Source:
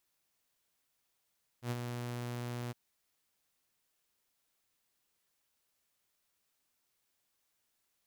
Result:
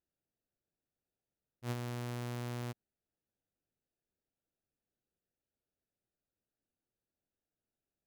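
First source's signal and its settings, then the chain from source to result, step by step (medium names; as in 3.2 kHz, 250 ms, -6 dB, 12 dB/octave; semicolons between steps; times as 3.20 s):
ADSR saw 121 Hz, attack 88 ms, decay 36 ms, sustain -5.5 dB, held 1.09 s, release 21 ms -29.5 dBFS
local Wiener filter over 41 samples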